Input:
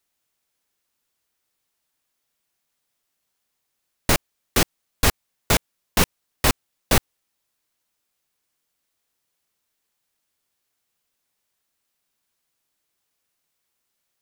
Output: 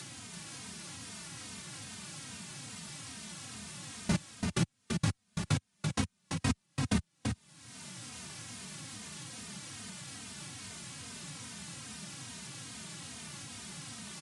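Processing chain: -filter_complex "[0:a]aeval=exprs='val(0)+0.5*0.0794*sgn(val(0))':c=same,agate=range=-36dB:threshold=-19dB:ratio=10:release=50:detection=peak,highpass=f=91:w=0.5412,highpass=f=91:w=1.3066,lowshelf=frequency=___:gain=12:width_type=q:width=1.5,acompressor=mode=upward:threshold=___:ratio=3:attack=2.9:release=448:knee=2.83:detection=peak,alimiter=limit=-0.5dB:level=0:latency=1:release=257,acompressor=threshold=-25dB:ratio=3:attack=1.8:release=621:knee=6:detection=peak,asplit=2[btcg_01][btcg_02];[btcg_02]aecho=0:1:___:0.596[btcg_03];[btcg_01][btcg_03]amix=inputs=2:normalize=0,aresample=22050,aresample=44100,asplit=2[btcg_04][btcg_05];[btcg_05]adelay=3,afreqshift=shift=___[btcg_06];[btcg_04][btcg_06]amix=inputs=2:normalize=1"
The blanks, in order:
290, -26dB, 336, -2.4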